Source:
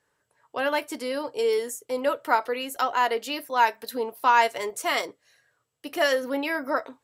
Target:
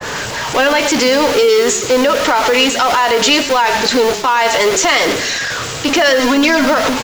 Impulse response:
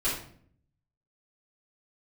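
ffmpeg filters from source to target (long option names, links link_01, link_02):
-filter_complex "[0:a]aeval=exprs='val(0)+0.5*0.0473*sgn(val(0))':channel_layout=same,aresample=16000,aresample=44100,agate=range=-33dB:threshold=-29dB:ratio=3:detection=peak,asplit=2[link_01][link_02];[link_02]acompressor=threshold=-28dB:ratio=6,volume=1.5dB[link_03];[link_01][link_03]amix=inputs=2:normalize=0,asettb=1/sr,asplit=3[link_04][link_05][link_06];[link_04]atrim=end=6.194[link_07];[link_05]atrim=start=6.19:end=6.65,asetpts=PTS-STARTPTS,afade=type=in:duration=0.004:curve=qsin,afade=type=out:start_time=0.456:duration=0.004:curve=qsin,aecho=1:1:2.9:0.92,atrim=end_sample=20286[link_08];[link_06]atrim=start=6.646[link_09];[link_07][link_08]acrossfade=duration=0.004:curve1=hsin:curve2=qsin[link_10];[link_10][link_09]acrossfade=duration=0.004:curve1=qsin:curve2=hsin,asplit=4[link_11][link_12][link_13][link_14];[link_12]adelay=110,afreqshift=-31,volume=-13dB[link_15];[link_13]adelay=220,afreqshift=-62,volume=-22.9dB[link_16];[link_14]adelay=330,afreqshift=-93,volume=-32.8dB[link_17];[link_11][link_15][link_16][link_17]amix=inputs=4:normalize=0,acrossover=split=720|1600[link_18][link_19][link_20];[link_18]acrusher=bits=6:mix=0:aa=0.000001[link_21];[link_21][link_19][link_20]amix=inputs=3:normalize=0,alimiter=level_in=14dB:limit=-1dB:release=50:level=0:latency=1,adynamicequalizer=threshold=0.1:dfrequency=1600:dqfactor=0.7:tfrequency=1600:tqfactor=0.7:attack=5:release=100:ratio=0.375:range=2:mode=boostabove:tftype=highshelf,volume=-4dB"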